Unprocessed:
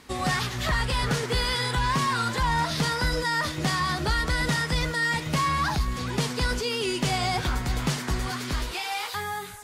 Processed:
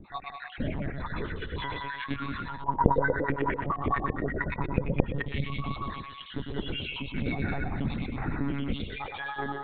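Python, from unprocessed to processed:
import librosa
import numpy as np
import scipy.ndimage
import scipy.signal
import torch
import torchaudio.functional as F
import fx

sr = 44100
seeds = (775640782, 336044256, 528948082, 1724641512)

y = fx.spec_dropout(x, sr, seeds[0], share_pct=78)
y = fx.peak_eq(y, sr, hz=3100.0, db=-2.5, octaves=1.3)
y = fx.hum_notches(y, sr, base_hz=60, count=2)
y = y + 10.0 ** (-6.0 / 20.0) * np.pad(y, (int(192 * sr / 1000.0), 0))[:len(y)]
y = fx.over_compress(y, sr, threshold_db=-34.0, ratio=-1.0)
y = fx.peak_eq(y, sr, hz=200.0, db=11.5, octaves=1.7)
y = fx.doubler(y, sr, ms=15.0, db=-9)
y = fx.echo_feedback(y, sr, ms=114, feedback_pct=32, wet_db=-5.0)
y = fx.filter_lfo_lowpass(y, sr, shape='saw_up', hz=8.9, low_hz=320.0, high_hz=2400.0, q=6.0, at=(2.63, 5.28))
y = fx.lpc_monotone(y, sr, seeds[1], pitch_hz=140.0, order=16)
y = fx.transformer_sat(y, sr, knee_hz=230.0)
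y = y * librosa.db_to_amplitude(-3.0)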